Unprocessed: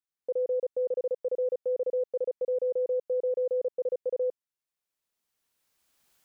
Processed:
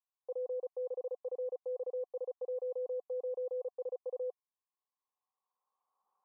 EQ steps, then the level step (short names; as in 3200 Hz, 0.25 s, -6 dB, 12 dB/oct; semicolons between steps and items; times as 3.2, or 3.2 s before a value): vocal tract filter a; HPF 250 Hz; fixed phaser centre 450 Hz, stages 8; +12.0 dB